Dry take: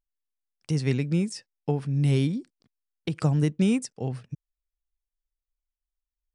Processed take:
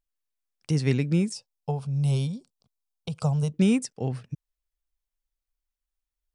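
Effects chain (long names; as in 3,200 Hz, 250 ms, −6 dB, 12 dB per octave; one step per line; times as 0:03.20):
0:01.34–0:03.54: phaser with its sweep stopped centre 760 Hz, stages 4
level +1.5 dB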